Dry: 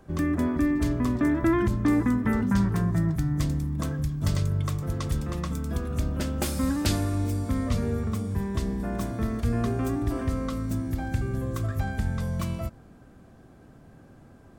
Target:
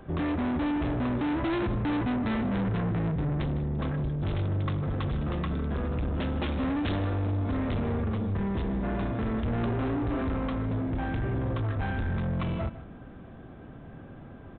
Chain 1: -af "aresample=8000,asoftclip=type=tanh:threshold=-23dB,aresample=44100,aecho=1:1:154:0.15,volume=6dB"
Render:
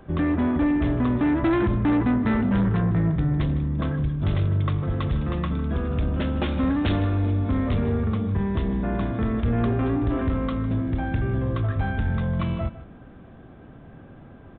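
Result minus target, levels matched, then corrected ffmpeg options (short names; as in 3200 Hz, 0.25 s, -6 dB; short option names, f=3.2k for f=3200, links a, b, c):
soft clip: distortion -7 dB
-af "aresample=8000,asoftclip=type=tanh:threshold=-32.5dB,aresample=44100,aecho=1:1:154:0.15,volume=6dB"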